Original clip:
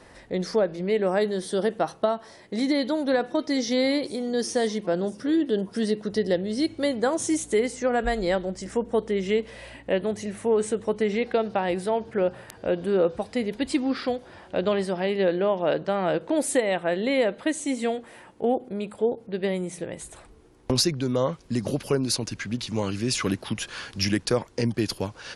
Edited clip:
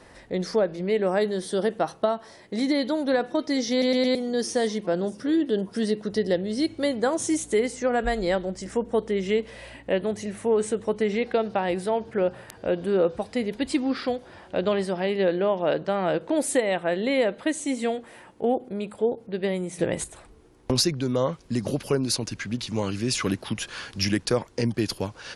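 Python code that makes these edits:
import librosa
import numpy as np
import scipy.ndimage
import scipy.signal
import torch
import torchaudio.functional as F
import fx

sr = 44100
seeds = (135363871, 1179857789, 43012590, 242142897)

y = fx.edit(x, sr, fx.stutter_over(start_s=3.71, slice_s=0.11, count=4),
    fx.clip_gain(start_s=19.79, length_s=0.25, db=8.5), tone=tone)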